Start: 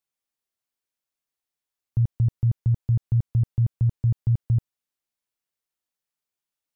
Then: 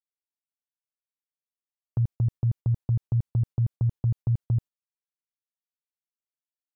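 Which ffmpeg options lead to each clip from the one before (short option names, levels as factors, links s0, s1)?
-af "agate=range=0.112:threshold=0.0251:ratio=16:detection=peak,volume=0.708"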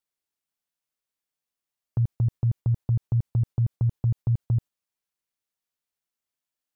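-af "alimiter=limit=0.0631:level=0:latency=1,volume=2.11"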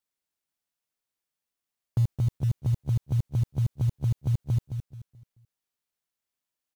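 -filter_complex "[0:a]asplit=2[s0][s1];[s1]adelay=216,lowpass=f=940:p=1,volume=0.398,asplit=2[s2][s3];[s3]adelay=216,lowpass=f=940:p=1,volume=0.33,asplit=2[s4][s5];[s5]adelay=216,lowpass=f=940:p=1,volume=0.33,asplit=2[s6][s7];[s7]adelay=216,lowpass=f=940:p=1,volume=0.33[s8];[s0][s2][s4][s6][s8]amix=inputs=5:normalize=0,acrusher=bits=7:mode=log:mix=0:aa=0.000001"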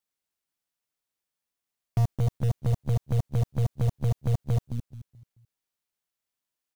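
-af "aeval=exprs='0.133*(cos(1*acos(clip(val(0)/0.133,-1,1)))-cos(1*PI/2))+0.0237*(cos(6*acos(clip(val(0)/0.133,-1,1)))-cos(6*PI/2))':c=same"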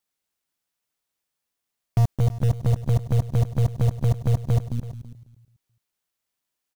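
-af "aecho=1:1:330:0.178,volume=1.68"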